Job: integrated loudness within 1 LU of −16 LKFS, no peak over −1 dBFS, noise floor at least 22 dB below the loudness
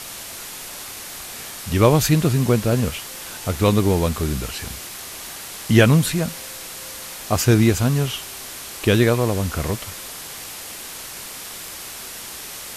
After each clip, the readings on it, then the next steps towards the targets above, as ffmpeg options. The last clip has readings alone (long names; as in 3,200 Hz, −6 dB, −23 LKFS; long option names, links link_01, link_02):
background noise floor −35 dBFS; target noise floor −44 dBFS; integrated loudness −22.0 LKFS; sample peak −2.0 dBFS; target loudness −16.0 LKFS
→ -af "afftdn=noise_reduction=9:noise_floor=-35"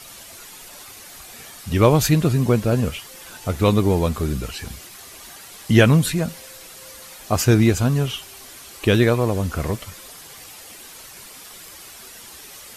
background noise floor −42 dBFS; integrated loudness −19.5 LKFS; sample peak −2.0 dBFS; target loudness −16.0 LKFS
→ -af "volume=3.5dB,alimiter=limit=-1dB:level=0:latency=1"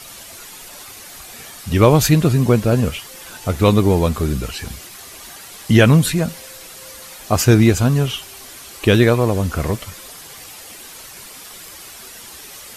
integrated loudness −16.0 LKFS; sample peak −1.0 dBFS; background noise floor −38 dBFS